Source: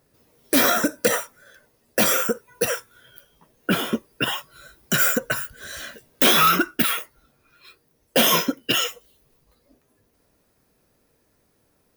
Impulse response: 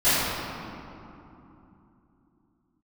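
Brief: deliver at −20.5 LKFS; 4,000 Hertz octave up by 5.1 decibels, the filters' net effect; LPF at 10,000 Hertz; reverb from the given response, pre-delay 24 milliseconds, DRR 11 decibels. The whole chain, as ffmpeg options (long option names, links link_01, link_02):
-filter_complex "[0:a]lowpass=10000,equalizer=frequency=4000:width_type=o:gain=7,asplit=2[link_01][link_02];[1:a]atrim=start_sample=2205,adelay=24[link_03];[link_02][link_03]afir=irnorm=-1:irlink=0,volume=-31dB[link_04];[link_01][link_04]amix=inputs=2:normalize=0,volume=-0.5dB"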